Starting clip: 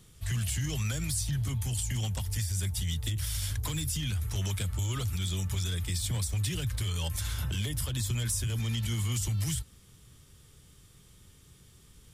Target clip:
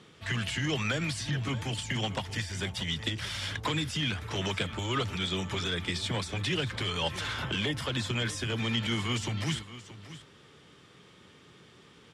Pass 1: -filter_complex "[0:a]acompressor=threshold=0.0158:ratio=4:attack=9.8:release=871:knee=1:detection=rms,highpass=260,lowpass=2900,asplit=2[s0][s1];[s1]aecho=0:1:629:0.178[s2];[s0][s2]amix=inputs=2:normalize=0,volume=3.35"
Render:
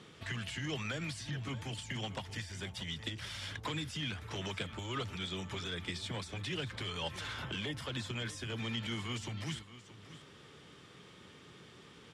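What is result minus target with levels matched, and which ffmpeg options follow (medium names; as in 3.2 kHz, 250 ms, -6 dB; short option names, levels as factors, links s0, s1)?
compression: peak gain reduction +9 dB
-filter_complex "[0:a]highpass=260,lowpass=2900,asplit=2[s0][s1];[s1]aecho=0:1:629:0.178[s2];[s0][s2]amix=inputs=2:normalize=0,volume=3.35"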